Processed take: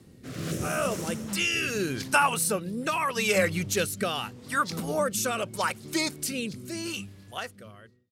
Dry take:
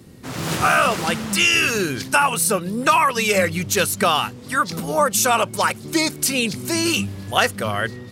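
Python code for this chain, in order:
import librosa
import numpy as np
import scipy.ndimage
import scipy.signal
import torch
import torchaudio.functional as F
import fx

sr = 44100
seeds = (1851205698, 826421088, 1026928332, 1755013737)

y = fx.fade_out_tail(x, sr, length_s=2.61)
y = fx.rotary(y, sr, hz=0.8)
y = fx.spec_box(y, sr, start_s=0.52, length_s=0.76, low_hz=660.0, high_hz=5200.0, gain_db=-9)
y = y * 10.0 ** (-5.0 / 20.0)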